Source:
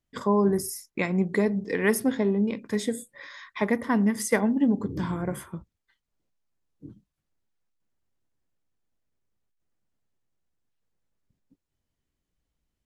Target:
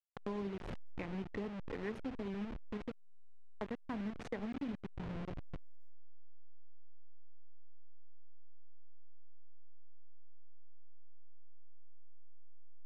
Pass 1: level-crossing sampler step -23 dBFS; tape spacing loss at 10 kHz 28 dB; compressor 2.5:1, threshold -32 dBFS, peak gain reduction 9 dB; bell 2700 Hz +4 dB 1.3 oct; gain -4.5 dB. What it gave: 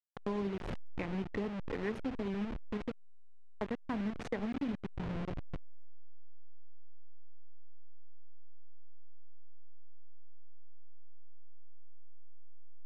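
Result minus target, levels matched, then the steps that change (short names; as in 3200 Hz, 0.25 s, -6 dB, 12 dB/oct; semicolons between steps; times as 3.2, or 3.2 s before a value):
compressor: peak gain reduction -4.5 dB
change: compressor 2.5:1, threshold -39.5 dBFS, peak gain reduction 13.5 dB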